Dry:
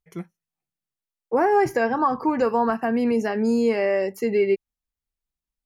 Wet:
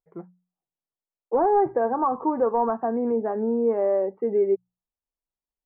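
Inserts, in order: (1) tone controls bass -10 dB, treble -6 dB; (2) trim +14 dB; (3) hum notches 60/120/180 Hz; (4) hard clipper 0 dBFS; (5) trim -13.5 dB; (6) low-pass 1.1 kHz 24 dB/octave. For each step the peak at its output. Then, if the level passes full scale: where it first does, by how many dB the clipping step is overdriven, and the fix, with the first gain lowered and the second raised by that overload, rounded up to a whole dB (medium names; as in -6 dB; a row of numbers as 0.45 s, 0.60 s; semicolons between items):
-10.0 dBFS, +4.0 dBFS, +4.0 dBFS, 0.0 dBFS, -13.5 dBFS, -12.0 dBFS; step 2, 4.0 dB; step 2 +10 dB, step 5 -9.5 dB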